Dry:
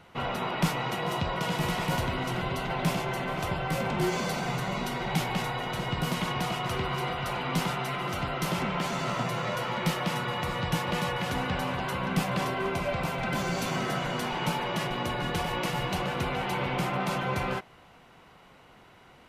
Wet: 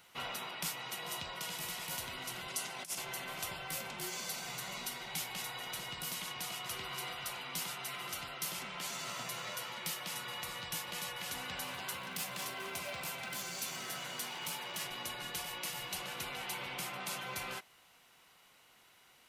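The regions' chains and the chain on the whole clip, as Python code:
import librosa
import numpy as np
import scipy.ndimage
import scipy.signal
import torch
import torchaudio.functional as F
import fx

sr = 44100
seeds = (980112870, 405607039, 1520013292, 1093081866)

y = fx.chain(x, sr, fx.highpass(hz=140.0, slope=12),
    fx.band_shelf(hz=7500.0, db=8.5, octaves=1.3),
    fx.over_compress(threshold_db=-32.0, ratio=-0.5), at=(2.48, 2.98))
y = fx.chain(y, sr, fx.highpass(hz=59.0, slope=24),
    fx.clip_hard(threshold_db=-24.0), at=(11.64, 14.86))
y = librosa.effects.preemphasis(y, coef=0.9, zi=[0.0])
y = fx.rider(y, sr, range_db=10, speed_s=0.5)
y = fx.low_shelf(y, sr, hz=200.0, db=-5.0)
y = y * 10.0 ** (2.0 / 20.0)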